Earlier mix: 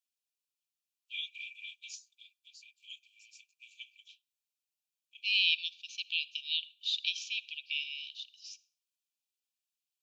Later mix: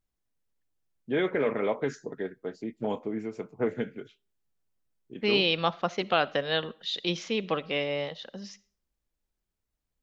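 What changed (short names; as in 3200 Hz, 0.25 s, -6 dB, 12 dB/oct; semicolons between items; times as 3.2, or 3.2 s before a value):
first voice -4.5 dB; master: remove brick-wall FIR high-pass 2300 Hz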